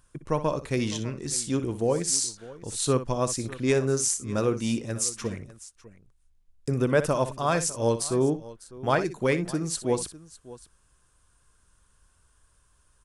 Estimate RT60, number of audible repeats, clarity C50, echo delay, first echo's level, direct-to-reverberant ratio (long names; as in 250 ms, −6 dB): no reverb audible, 2, no reverb audible, 61 ms, −12.5 dB, no reverb audible